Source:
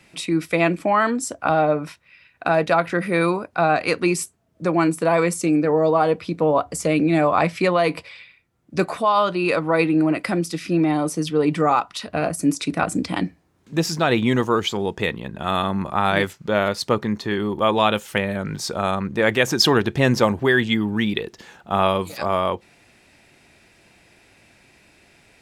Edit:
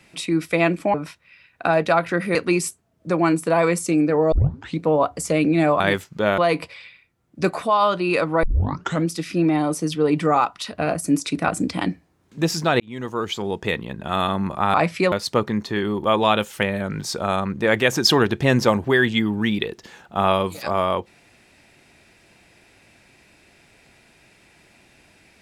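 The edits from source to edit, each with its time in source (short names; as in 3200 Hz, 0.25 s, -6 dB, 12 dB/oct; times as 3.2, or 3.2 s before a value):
0.94–1.75 cut
3.16–3.9 cut
5.87 tape start 0.47 s
7.35–7.73 swap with 16.09–16.67
9.78 tape start 0.64 s
14.15–15.3 fade in equal-power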